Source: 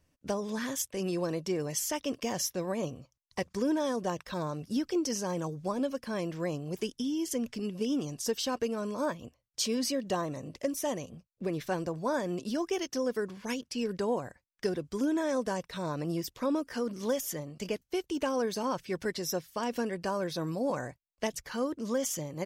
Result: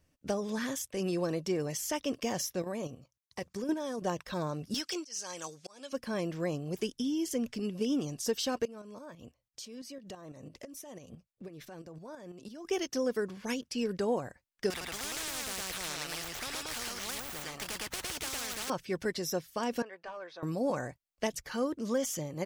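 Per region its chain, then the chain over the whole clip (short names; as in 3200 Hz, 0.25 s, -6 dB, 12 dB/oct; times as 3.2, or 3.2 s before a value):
2.62–4.02 HPF 53 Hz 6 dB/oct + high shelf 8800 Hz +4 dB + level quantiser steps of 9 dB
4.74–5.93 weighting filter ITU-R 468 + auto swell 0.502 s + hard clip -28.5 dBFS
8.65–12.65 compressor 5:1, threshold -41 dBFS + tremolo saw up 6 Hz, depth 60%
14.7–18.7 median filter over 9 samples + echo 0.109 s -3 dB + spectral compressor 10:1
19.82–20.43 HPF 870 Hz + hard clip -31.5 dBFS + tape spacing loss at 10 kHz 31 dB
whole clip: de-esser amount 60%; notch 1000 Hz, Q 16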